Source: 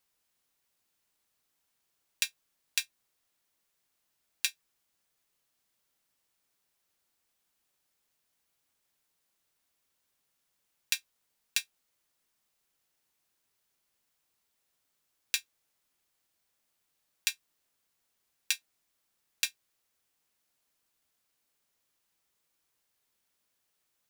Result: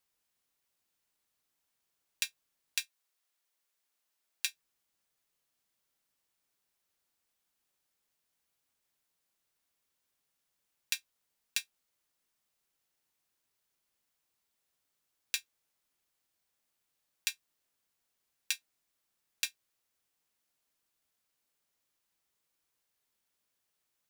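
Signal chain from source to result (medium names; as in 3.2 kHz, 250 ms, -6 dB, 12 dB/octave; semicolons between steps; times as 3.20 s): 2.79–4.48 s: high-pass 870 Hz -> 320 Hz 6 dB/octave; trim -3.5 dB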